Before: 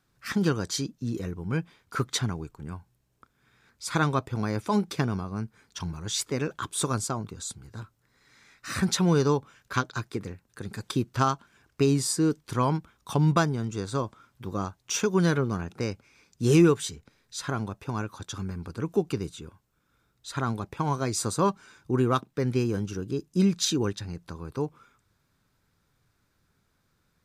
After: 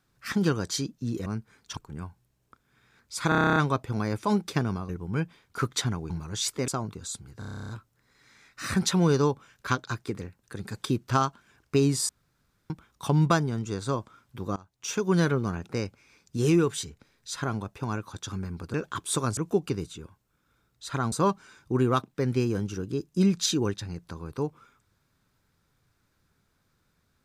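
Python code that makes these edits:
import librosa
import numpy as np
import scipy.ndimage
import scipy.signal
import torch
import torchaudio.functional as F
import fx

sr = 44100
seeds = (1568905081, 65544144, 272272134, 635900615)

y = fx.edit(x, sr, fx.swap(start_s=1.26, length_s=1.21, other_s=5.32, other_length_s=0.51),
    fx.stutter(start_s=3.99, slice_s=0.03, count=10),
    fx.move(start_s=6.41, length_s=0.63, to_s=18.8),
    fx.stutter(start_s=7.75, slice_s=0.03, count=11),
    fx.room_tone_fill(start_s=12.15, length_s=0.61),
    fx.fade_in_from(start_s=14.62, length_s=0.6, floor_db=-21.5),
    fx.clip_gain(start_s=16.43, length_s=0.3, db=-3.5),
    fx.cut(start_s=20.55, length_s=0.76), tone=tone)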